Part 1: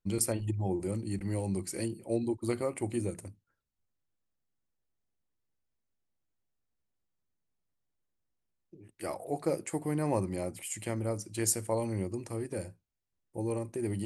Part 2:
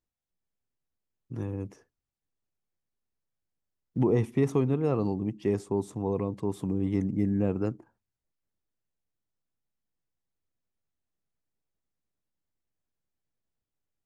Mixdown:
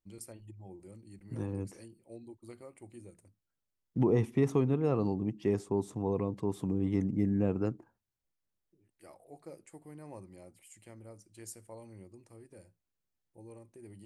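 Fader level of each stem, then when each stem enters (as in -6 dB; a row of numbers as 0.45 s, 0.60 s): -17.5 dB, -2.5 dB; 0.00 s, 0.00 s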